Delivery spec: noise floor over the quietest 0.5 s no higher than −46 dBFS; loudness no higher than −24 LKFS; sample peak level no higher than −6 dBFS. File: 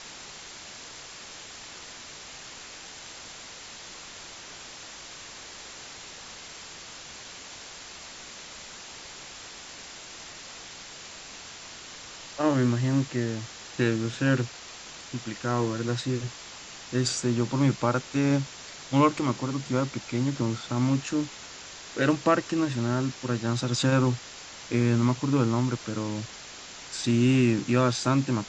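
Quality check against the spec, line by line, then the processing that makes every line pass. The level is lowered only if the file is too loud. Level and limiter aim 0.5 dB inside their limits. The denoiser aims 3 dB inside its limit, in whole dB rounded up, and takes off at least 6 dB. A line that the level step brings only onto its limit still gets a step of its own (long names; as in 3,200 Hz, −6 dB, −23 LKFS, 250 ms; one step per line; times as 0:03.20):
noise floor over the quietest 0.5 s −44 dBFS: out of spec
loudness −27.0 LKFS: in spec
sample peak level −8.5 dBFS: in spec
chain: broadband denoise 6 dB, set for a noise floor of −44 dBFS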